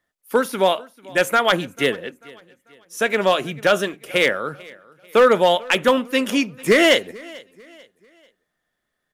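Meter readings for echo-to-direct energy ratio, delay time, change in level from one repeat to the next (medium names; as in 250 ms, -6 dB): -22.5 dB, 442 ms, -8.5 dB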